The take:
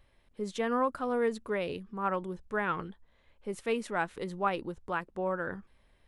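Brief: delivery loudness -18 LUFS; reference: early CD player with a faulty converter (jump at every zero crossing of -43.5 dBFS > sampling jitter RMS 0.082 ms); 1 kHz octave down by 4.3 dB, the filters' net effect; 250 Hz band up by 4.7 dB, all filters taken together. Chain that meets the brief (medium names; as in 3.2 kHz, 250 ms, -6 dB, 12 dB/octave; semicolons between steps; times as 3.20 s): peaking EQ 250 Hz +6 dB; peaking EQ 1 kHz -6 dB; jump at every zero crossing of -43.5 dBFS; sampling jitter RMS 0.082 ms; trim +14 dB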